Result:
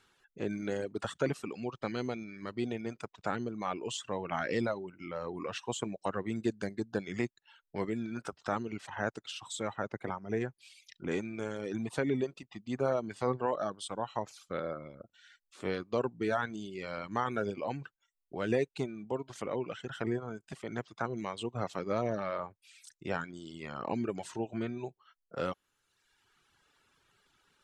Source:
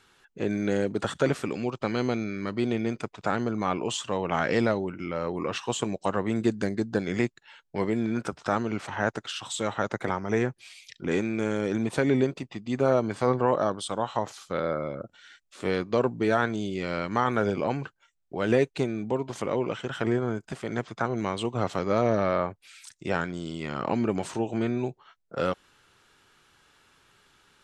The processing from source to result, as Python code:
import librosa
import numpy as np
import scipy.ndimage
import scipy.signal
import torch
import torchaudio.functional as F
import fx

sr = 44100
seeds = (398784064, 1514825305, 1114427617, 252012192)

y = fx.dereverb_blind(x, sr, rt60_s=1.1)
y = fx.high_shelf(y, sr, hz=fx.line((9.75, 3300.0), (10.4, 2200.0)), db=-9.5, at=(9.75, 10.4), fade=0.02)
y = y * 10.0 ** (-6.5 / 20.0)